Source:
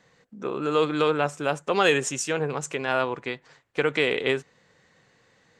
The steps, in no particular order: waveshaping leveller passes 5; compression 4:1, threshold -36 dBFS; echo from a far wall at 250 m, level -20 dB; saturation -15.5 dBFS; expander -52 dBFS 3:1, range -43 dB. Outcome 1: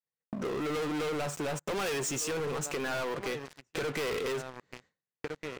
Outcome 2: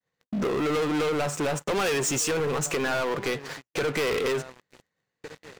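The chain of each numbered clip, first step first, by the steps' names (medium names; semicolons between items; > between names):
echo from a far wall > waveshaping leveller > expander > saturation > compression; saturation > compression > echo from a far wall > expander > waveshaping leveller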